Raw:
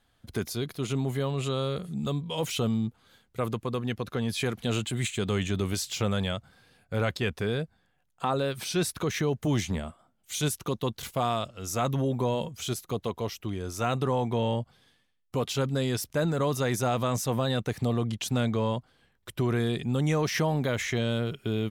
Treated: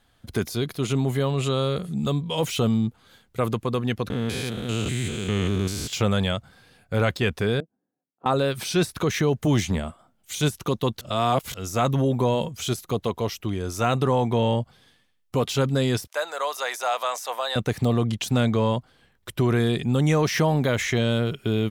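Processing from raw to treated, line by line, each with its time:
4.10–5.93 s: spectrogram pixelated in time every 200 ms
7.60–8.26 s: ladder band-pass 320 Hz, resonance 50%
11.01–11.54 s: reverse
16.07–17.56 s: high-pass 630 Hz 24 dB/octave
whole clip: de-esser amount 70%; trim +5.5 dB

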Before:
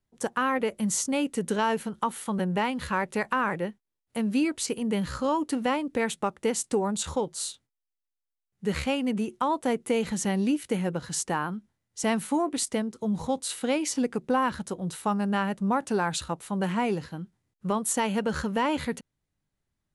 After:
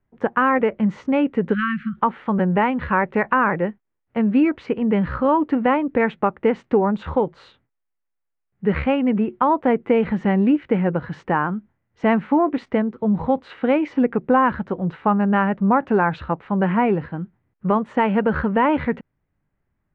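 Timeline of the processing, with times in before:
1.54–1.97 s: spectral selection erased 240–1100 Hz
whole clip: low-pass 2.2 kHz 24 dB/octave; trim +8.5 dB

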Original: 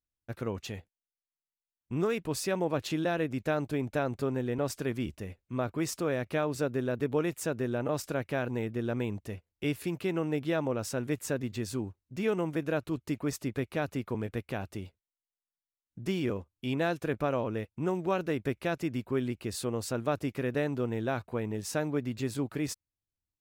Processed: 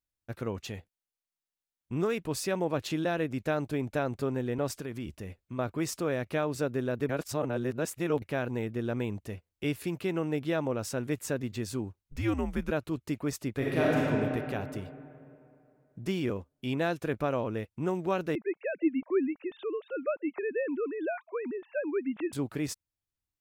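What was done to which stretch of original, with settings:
4.79–5.59 s: compression 3:1, threshold -34 dBFS
7.09–8.22 s: reverse
12.03–12.71 s: frequency shift -110 Hz
13.57–13.99 s: reverb throw, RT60 2.7 s, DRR -6.5 dB
18.35–22.33 s: formants replaced by sine waves

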